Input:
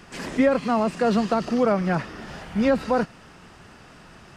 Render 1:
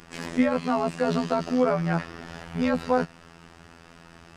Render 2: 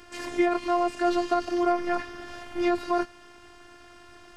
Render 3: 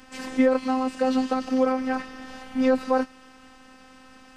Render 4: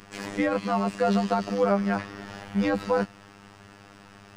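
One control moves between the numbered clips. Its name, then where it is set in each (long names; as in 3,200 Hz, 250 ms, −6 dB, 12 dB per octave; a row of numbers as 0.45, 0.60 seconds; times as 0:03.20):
phases set to zero, frequency: 84, 350, 260, 100 Hertz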